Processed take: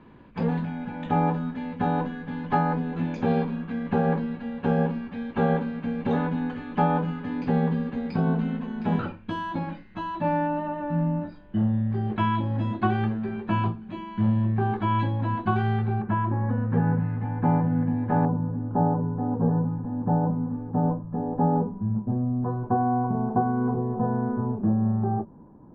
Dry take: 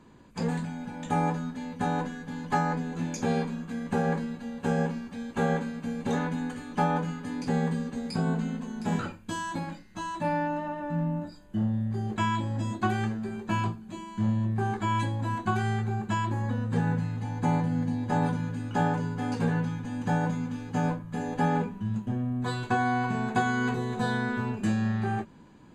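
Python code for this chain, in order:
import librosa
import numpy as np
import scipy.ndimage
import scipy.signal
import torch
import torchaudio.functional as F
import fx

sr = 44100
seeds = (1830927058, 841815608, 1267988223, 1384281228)

y = fx.dynamic_eq(x, sr, hz=2000.0, q=1.4, threshold_db=-47.0, ratio=4.0, max_db=-6)
y = fx.lowpass(y, sr, hz=fx.steps((0.0, 3200.0), (16.02, 2000.0), (18.25, 1000.0)), slope=24)
y = F.gain(torch.from_numpy(y), 4.0).numpy()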